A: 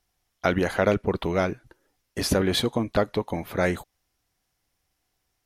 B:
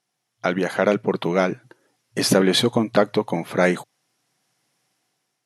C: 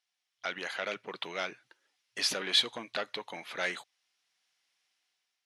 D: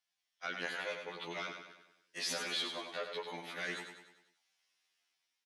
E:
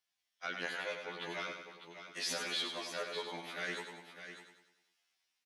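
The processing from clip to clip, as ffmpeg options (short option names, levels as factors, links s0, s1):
-af "afftfilt=real='re*between(b*sr/4096,110,12000)':imag='im*between(b*sr/4096,110,12000)':win_size=4096:overlap=0.75,dynaudnorm=f=330:g=5:m=3.16"
-af "asoftclip=type=tanh:threshold=0.355,bandpass=f=3200:t=q:w=1:csg=0,volume=0.75"
-filter_complex "[0:a]alimiter=limit=0.0631:level=0:latency=1:release=15,asplit=2[s0][s1];[s1]aecho=0:1:98|196|294|392|490|588:0.447|0.223|0.112|0.0558|0.0279|0.014[s2];[s0][s2]amix=inputs=2:normalize=0,afftfilt=real='re*2*eq(mod(b,4),0)':imag='im*2*eq(mod(b,4),0)':win_size=2048:overlap=0.75,volume=0.891"
-af "aecho=1:1:600:0.316"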